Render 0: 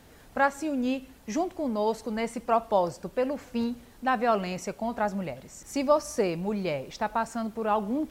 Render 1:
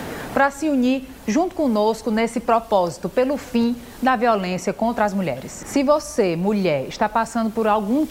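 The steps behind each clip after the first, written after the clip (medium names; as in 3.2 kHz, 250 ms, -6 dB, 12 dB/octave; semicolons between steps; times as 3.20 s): three bands compressed up and down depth 70%; trim +8 dB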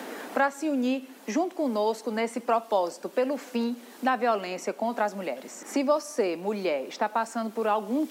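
steep high-pass 230 Hz 36 dB/octave; trim -7 dB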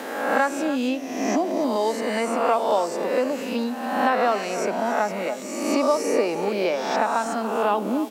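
reverse spectral sustain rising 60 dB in 1.10 s; delay 288 ms -13 dB; trim +1.5 dB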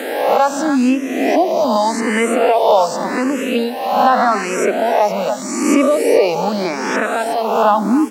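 loudness maximiser +11.5 dB; barber-pole phaser +0.84 Hz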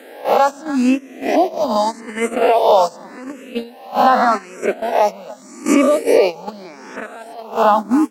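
gate -14 dBFS, range -16 dB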